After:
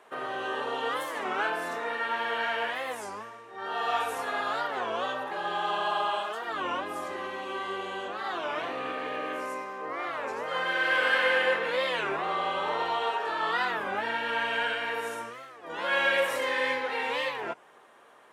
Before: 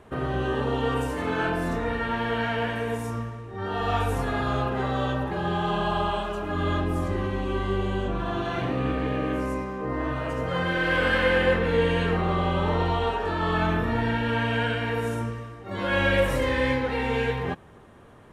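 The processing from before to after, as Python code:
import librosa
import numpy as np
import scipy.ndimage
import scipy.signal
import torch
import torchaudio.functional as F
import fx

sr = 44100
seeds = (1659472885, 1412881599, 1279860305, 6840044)

y = scipy.signal.sosfilt(scipy.signal.butter(2, 630.0, 'highpass', fs=sr, output='sos'), x)
y = fx.record_warp(y, sr, rpm=33.33, depth_cents=250.0)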